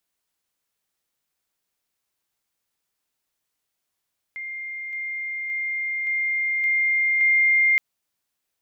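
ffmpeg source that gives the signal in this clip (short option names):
-f lavfi -i "aevalsrc='pow(10,(-30+3*floor(t/0.57))/20)*sin(2*PI*2110*t)':d=3.42:s=44100"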